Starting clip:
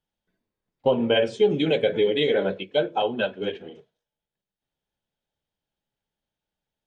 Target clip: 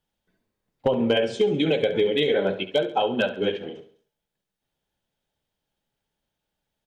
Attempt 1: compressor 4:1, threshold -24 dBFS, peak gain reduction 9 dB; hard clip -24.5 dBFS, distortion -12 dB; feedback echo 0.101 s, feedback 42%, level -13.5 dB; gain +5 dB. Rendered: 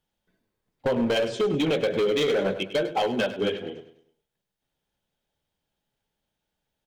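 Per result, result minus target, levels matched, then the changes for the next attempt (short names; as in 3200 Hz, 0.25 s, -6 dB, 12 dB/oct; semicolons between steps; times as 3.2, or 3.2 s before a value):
hard clip: distortion +18 dB; echo 32 ms late
change: hard clip -17.5 dBFS, distortion -29 dB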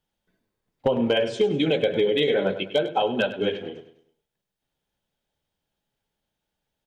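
echo 32 ms late
change: feedback echo 69 ms, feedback 42%, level -13.5 dB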